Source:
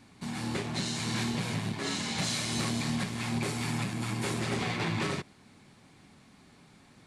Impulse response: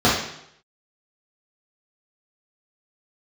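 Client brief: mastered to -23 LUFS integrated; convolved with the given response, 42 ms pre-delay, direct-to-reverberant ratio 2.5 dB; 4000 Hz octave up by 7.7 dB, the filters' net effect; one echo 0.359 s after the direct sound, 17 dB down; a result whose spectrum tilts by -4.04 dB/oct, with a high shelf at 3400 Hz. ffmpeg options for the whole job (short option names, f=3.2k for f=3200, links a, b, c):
-filter_complex "[0:a]highshelf=f=3.4k:g=4.5,equalizer=f=4k:t=o:g=6,aecho=1:1:359:0.141,asplit=2[a][b];[1:a]atrim=start_sample=2205,adelay=42[c];[b][c]afir=irnorm=-1:irlink=0,volume=-25dB[d];[a][d]amix=inputs=2:normalize=0,volume=2.5dB"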